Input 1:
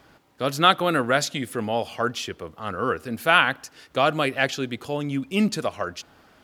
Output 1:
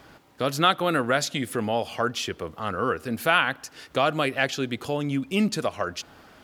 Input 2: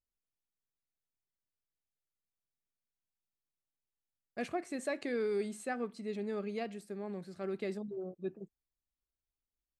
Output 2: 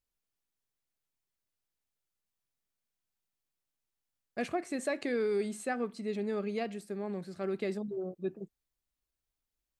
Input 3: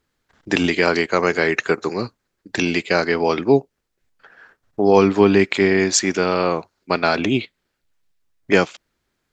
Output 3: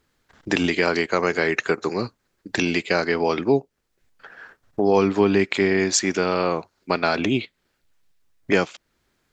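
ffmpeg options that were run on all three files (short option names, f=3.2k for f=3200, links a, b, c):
-af "acompressor=threshold=-33dB:ratio=1.5,volume=4dB"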